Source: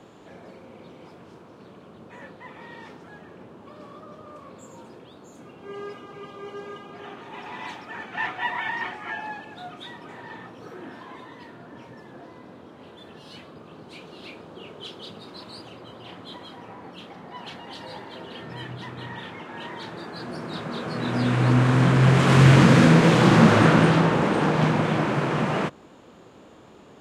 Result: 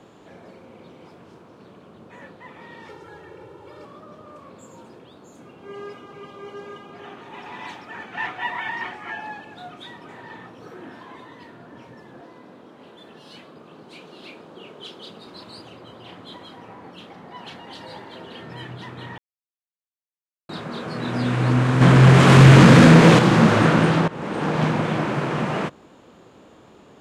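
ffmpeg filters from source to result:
ffmpeg -i in.wav -filter_complex "[0:a]asettb=1/sr,asplit=3[link_01][link_02][link_03];[link_01]atrim=end=2.884[link_04];[link_02]atrim=start=2.88:end=3.85,asetpts=PTS-STARTPTS,afade=type=in:duration=0.004:curve=qsin,afade=type=out:start_time=0.966:duration=0.004:curve=qsin,aecho=1:1:2.2:0.99,atrim=end_sample=42777[link_05];[link_03]atrim=start=3.846[link_06];[link_04][link_05]acrossfade=duration=0.004:curve1=hsin:curve2=qsin[link_07];[link_07][link_06]acrossfade=duration=0.004:curve1=qsin:curve2=hsin,asettb=1/sr,asplit=3[link_08][link_09][link_10];[link_08]atrim=end=12.214[link_11];[link_09]atrim=start=12.21:end=15.27,asetpts=PTS-STARTPTS,afade=type=in:duration=0.004:curve=qsin,afade=type=out:start_time=3.056:duration=0.004:curve=qsin,highpass=150[link_12];[link_10]atrim=start=15.266[link_13];[link_11][link_12]acrossfade=duration=0.004:curve1=hsin:curve2=qsin[link_14];[link_14][link_13]acrossfade=duration=0.004:curve1=qsin:curve2=hsin,asettb=1/sr,asplit=3[link_15][link_16][link_17];[link_15]atrim=end=21.814[link_18];[link_16]atrim=start=21.81:end=23.19,asetpts=PTS-STARTPTS,afade=type=in:duration=0.004:curve=qsin,afade=type=out:start_time=1.376:duration=0.004:curve=qsin,acontrast=78[link_19];[link_17]atrim=start=23.186[link_20];[link_18][link_19]acrossfade=duration=0.004:curve1=hsin:curve2=qsin[link_21];[link_21][link_20]acrossfade=duration=0.004:curve1=qsin:curve2=hsin,asplit=4[link_22][link_23][link_24][link_25];[link_22]atrim=end=19.18,asetpts=PTS-STARTPTS,afade=type=out:start_time=19.176:duration=0.004:curve=hsin[link_26];[link_23]atrim=start=19.18:end=20.49,asetpts=PTS-STARTPTS,volume=0[link_27];[link_24]atrim=start=20.49:end=24.08,asetpts=PTS-STARTPTS,afade=type=in:duration=0.004:curve=hsin,afade=type=out:start_time=3.586:duration=0.004:curve=hsin:silence=0.125893[link_28];[link_25]atrim=start=24.08,asetpts=PTS-STARTPTS,afade=type=in:duration=0.49:silence=0.125893[link_29];[link_26][link_27][link_28][link_29]concat=n=4:v=0:a=1" out.wav

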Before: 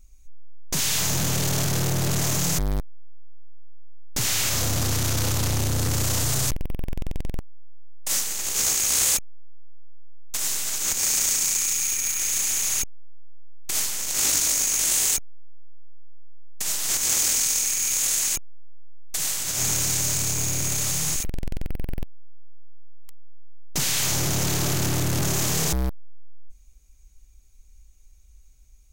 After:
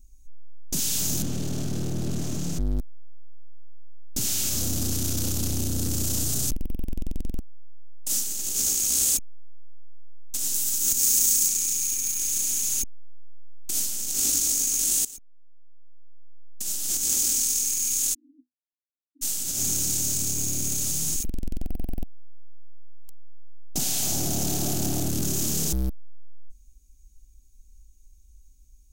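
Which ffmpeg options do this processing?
ffmpeg -i in.wav -filter_complex "[0:a]asettb=1/sr,asplit=3[link_01][link_02][link_03];[link_01]atrim=end=1.224[link_04];[link_02]atrim=start=1.22:end=2.79,asetpts=PTS-STARTPTS,afade=type=in:duration=0.004:curve=qsin,afade=type=out:start_time=1.566:duration=0.004:curve=qsin,aemphasis=mode=reproduction:type=75kf[link_05];[link_03]atrim=start=2.786[link_06];[link_04][link_05]acrossfade=duration=0.004:curve1=hsin:curve2=qsin[link_07];[link_07][link_06]acrossfade=duration=0.004:curve1=qsin:curve2=hsin,asettb=1/sr,asplit=3[link_08][link_09][link_10];[link_08]atrim=end=10.544[link_11];[link_09]atrim=start=10.54:end=11.48,asetpts=PTS-STARTPTS,afade=type=in:duration=0.004:curve=qsin,afade=type=out:start_time=0.936:duration=0.004:curve=qsin,highshelf=frequency=9200:gain=7.5[link_12];[link_10]atrim=start=11.476[link_13];[link_11][link_12]acrossfade=duration=0.004:curve1=hsin:curve2=qsin[link_14];[link_14][link_13]acrossfade=duration=0.004:curve1=qsin:curve2=hsin,asplit=3[link_15][link_16][link_17];[link_15]afade=type=out:start_time=18.13:duration=0.02[link_18];[link_16]asuperpass=centerf=280:order=12:qfactor=4.2,afade=type=in:start_time=18.13:duration=0.02,afade=type=out:start_time=19.21:duration=0.02[link_19];[link_17]afade=type=in:start_time=19.21:duration=0.02[link_20];[link_18][link_19][link_20]amix=inputs=3:normalize=0,asettb=1/sr,asplit=3[link_21][link_22][link_23];[link_21]atrim=end=21.614[link_24];[link_22]atrim=start=21.61:end=25.1,asetpts=PTS-STARTPTS,afade=type=in:duration=0.004:curve=qsin,afade=type=out:start_time=3.486:duration=0.004:curve=qsin,equalizer=frequency=730:width_type=o:width=0.5:gain=11.5[link_25];[link_23]atrim=start=25.096[link_26];[link_24][link_25]acrossfade=duration=0.004:curve1=hsin:curve2=qsin[link_27];[link_27][link_26]acrossfade=duration=0.004:curve1=qsin:curve2=hsin,asplit=2[link_28][link_29];[link_28]atrim=end=15.05,asetpts=PTS-STARTPTS,afade=type=out:start_time=15.046:duration=0.004:curve=hsin:silence=0.1[link_30];[link_29]atrim=start=15.05,asetpts=PTS-STARTPTS,afade=type=in:duration=2.07:silence=0.1[link_31];[link_30][link_31]concat=n=2:v=0:a=1,equalizer=frequency=125:width_type=o:width=1:gain=-8,equalizer=frequency=250:width_type=o:width=1:gain=6,equalizer=frequency=500:width_type=o:width=1:gain=-6,equalizer=frequency=1000:width_type=o:width=1:gain=-12,equalizer=frequency=2000:width_type=o:width=1:gain=-12,equalizer=frequency=4000:width_type=o:width=1:gain=-3" out.wav

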